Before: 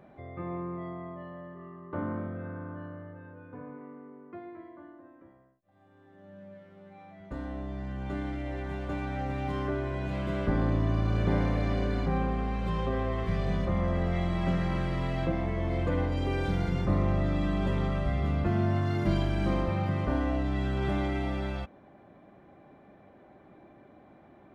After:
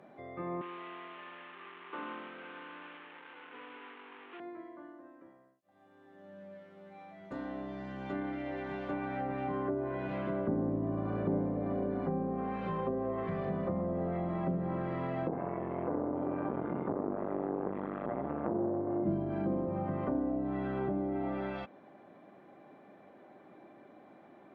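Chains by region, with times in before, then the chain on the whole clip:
0.61–4.4 delta modulation 16 kbps, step -40 dBFS + HPF 470 Hz + bell 610 Hz -14 dB 0.37 oct
15.28–19.04 LPF 1600 Hz + flutter echo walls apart 6.4 m, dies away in 0.51 s + core saturation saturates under 690 Hz
whole clip: HPF 210 Hz 12 dB/oct; treble ducked by the level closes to 540 Hz, closed at -28 dBFS

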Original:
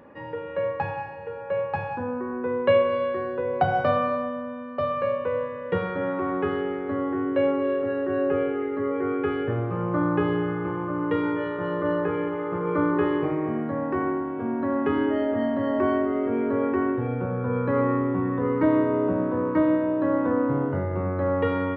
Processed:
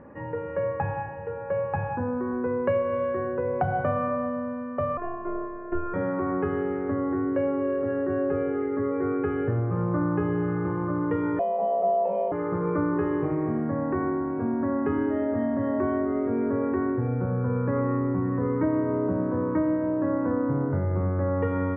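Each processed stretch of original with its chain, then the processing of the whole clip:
4.97–5.94 LPF 1500 Hz + robotiser 351 Hz + doubler 25 ms -4 dB
11.39–12.32 EQ curve 110 Hz 0 dB, 150 Hz -23 dB, 700 Hz +15 dB, 990 Hz -8 dB, 1500 Hz -30 dB, 2700 Hz +4 dB, 5100 Hz -15 dB + frequency shift +99 Hz
whole clip: LPF 2100 Hz 24 dB/oct; low shelf 190 Hz +9.5 dB; compressor 2.5:1, threshold -24 dBFS

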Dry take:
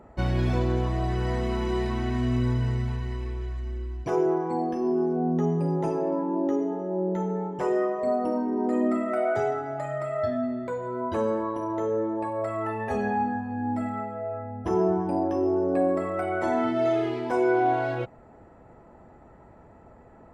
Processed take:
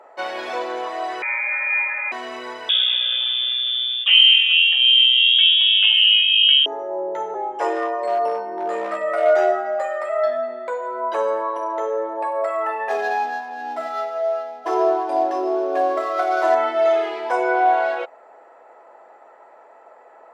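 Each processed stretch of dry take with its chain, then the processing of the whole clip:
1.22–2.12 brick-wall FIR high-pass 300 Hz + inverted band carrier 2800 Hz
2.69–6.66 bell 620 Hz +7 dB 1.6 oct + inverted band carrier 3500 Hz
7.34–10.09 frequency shift -41 Hz + hard clip -19 dBFS + doubler 13 ms -4 dB
12.89–16.55 median filter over 15 samples + comb 2.9 ms, depth 69%
whole clip: HPF 520 Hz 24 dB/oct; high shelf 6500 Hz -7 dB; gain +8.5 dB

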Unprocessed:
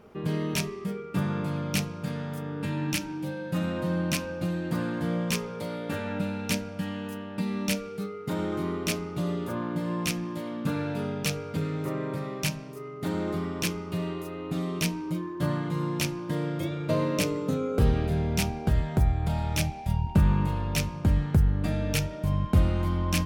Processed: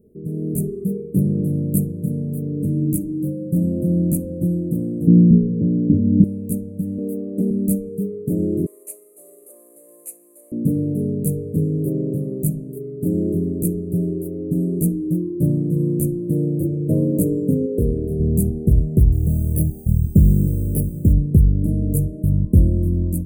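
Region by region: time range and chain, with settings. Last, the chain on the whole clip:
0.82–2.05 bell 12000 Hz +4.5 dB 0.28 oct + notch 6000 Hz
5.07–6.24 steep low-pass 990 Hz + resonant low shelf 390 Hz +10.5 dB, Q 1.5
6.98–7.51 HPF 210 Hz + bell 560 Hz +7 dB 2.5 oct + Doppler distortion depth 0.32 ms
8.66–10.52 CVSD 64 kbps + HPF 750 Hz 24 dB/oct
17.66–18.2 tone controls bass -9 dB, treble -4 dB + notch 780 Hz, Q 8.9
19.12–21.13 high shelf 3600 Hz +4.5 dB + careless resampling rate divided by 6×, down none, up hold
whole clip: inverse Chebyshev band-stop 820–5700 Hz, stop band 40 dB; AGC gain up to 10.5 dB

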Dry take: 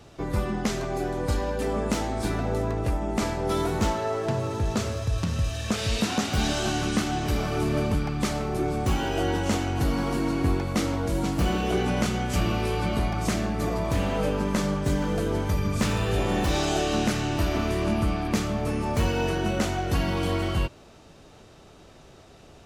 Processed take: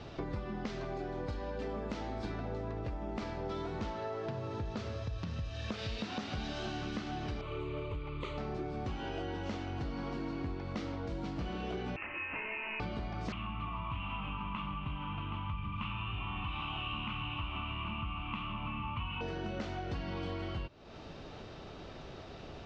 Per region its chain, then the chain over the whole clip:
7.41–8.38 fixed phaser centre 1100 Hz, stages 8 + Doppler distortion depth 0.1 ms
11.96–12.8 Chebyshev high-pass 690 Hz, order 3 + inverted band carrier 3300 Hz
13.32–19.21 EQ curve 120 Hz 0 dB, 310 Hz -9 dB, 490 Hz -26 dB, 1100 Hz +11 dB, 1700 Hz -12 dB, 2800 Hz +12 dB, 4700 Hz -25 dB + echo 0.773 s -9 dB
whole clip: LPF 4900 Hz 24 dB/oct; compressor, threshold -40 dBFS; gain +3 dB

